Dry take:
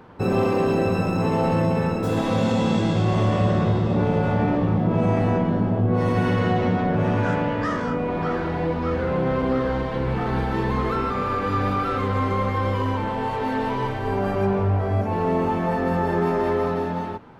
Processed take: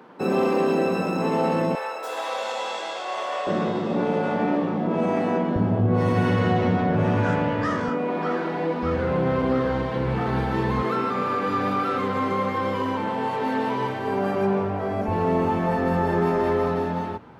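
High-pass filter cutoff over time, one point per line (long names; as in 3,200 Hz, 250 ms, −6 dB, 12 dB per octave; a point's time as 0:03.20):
high-pass filter 24 dB per octave
190 Hz
from 0:01.75 590 Hz
from 0:03.47 200 Hz
from 0:05.56 62 Hz
from 0:07.89 190 Hz
from 0:08.83 67 Hz
from 0:10.82 140 Hz
from 0:15.08 45 Hz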